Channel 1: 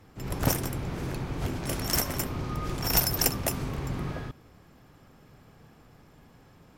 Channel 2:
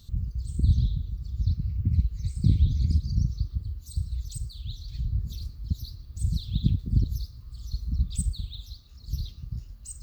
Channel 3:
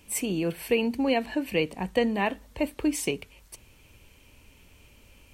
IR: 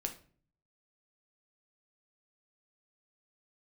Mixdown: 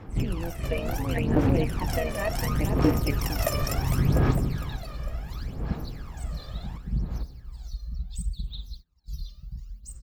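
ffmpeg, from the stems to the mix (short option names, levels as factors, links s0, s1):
-filter_complex "[0:a]highshelf=f=4000:g=-7,acompressor=threshold=0.0126:ratio=3,volume=1.19,asplit=2[s0][s1];[s1]volume=0.473[s2];[1:a]aecho=1:1:5.3:0.74,alimiter=limit=0.168:level=0:latency=1:release=373,volume=0.188[s3];[2:a]lowpass=2500,tremolo=f=170:d=0.857,volume=0.562,asplit=3[s4][s5][s6];[s5]volume=0.316[s7];[s6]apad=whole_len=298845[s8];[s0][s8]sidechaincompress=threshold=0.00891:ratio=8:attack=16:release=460[s9];[s3][s4]amix=inputs=2:normalize=0,agate=range=0.0398:threshold=0.00126:ratio=16:detection=peak,acompressor=threshold=0.00501:ratio=1.5,volume=1[s10];[s2][s7]amix=inputs=2:normalize=0,aecho=0:1:455|910|1365|1820|2275:1|0.39|0.152|0.0593|0.0231[s11];[s9][s10][s11]amix=inputs=3:normalize=0,aphaser=in_gain=1:out_gain=1:delay=1.7:decay=0.68:speed=0.7:type=sinusoidal,dynaudnorm=f=120:g=3:m=2.37"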